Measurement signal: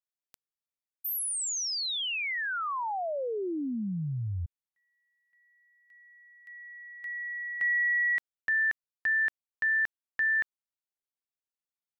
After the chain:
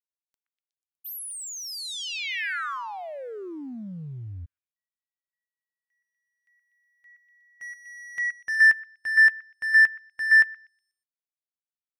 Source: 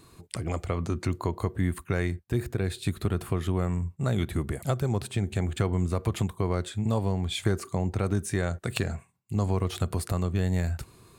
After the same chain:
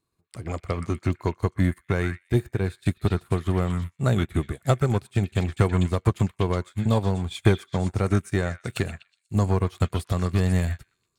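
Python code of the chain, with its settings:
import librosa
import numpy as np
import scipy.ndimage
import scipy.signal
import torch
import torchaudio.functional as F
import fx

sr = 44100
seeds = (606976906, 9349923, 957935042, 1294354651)

y = fx.leveller(x, sr, passes=1)
y = fx.echo_stepped(y, sr, ms=122, hz=1700.0, octaves=0.7, feedback_pct=70, wet_db=-2)
y = fx.upward_expand(y, sr, threshold_db=-39.0, expansion=2.5)
y = y * 10.0 ** (6.5 / 20.0)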